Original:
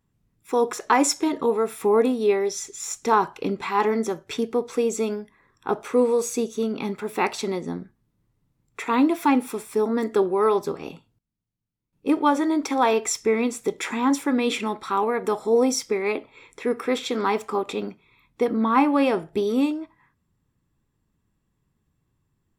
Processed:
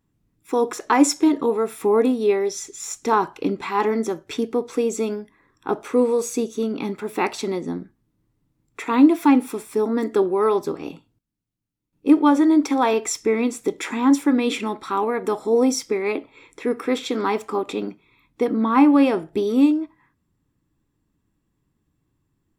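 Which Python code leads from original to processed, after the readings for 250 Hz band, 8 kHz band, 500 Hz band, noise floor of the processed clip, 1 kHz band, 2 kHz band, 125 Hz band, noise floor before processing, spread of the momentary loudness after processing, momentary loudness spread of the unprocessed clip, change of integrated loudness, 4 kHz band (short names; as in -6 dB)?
+5.0 dB, 0.0 dB, +1.0 dB, -73 dBFS, 0.0 dB, 0.0 dB, +1.0 dB, -74 dBFS, 12 LU, 10 LU, +2.5 dB, 0.0 dB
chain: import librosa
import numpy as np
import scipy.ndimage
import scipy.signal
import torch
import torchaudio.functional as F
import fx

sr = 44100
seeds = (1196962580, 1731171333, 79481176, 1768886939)

y = fx.peak_eq(x, sr, hz=300.0, db=8.0, octaves=0.4)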